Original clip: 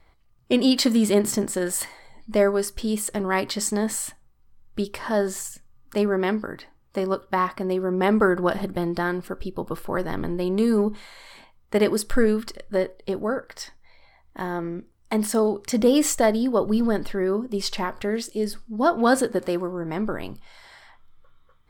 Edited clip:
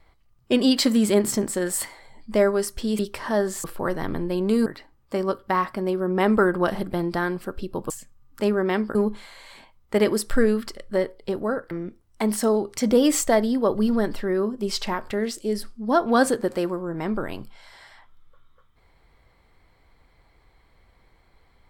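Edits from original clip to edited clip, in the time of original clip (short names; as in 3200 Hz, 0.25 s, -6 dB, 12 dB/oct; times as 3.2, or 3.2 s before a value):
2.99–4.79 cut
5.44–6.49 swap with 9.73–10.75
13.51–14.62 cut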